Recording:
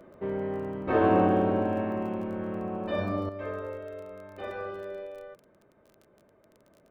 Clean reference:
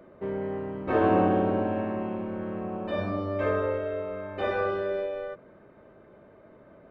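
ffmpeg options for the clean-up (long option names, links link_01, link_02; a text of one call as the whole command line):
ffmpeg -i in.wav -af "adeclick=threshold=4,asetnsamples=nb_out_samples=441:pad=0,asendcmd='3.29 volume volume 9dB',volume=0dB" out.wav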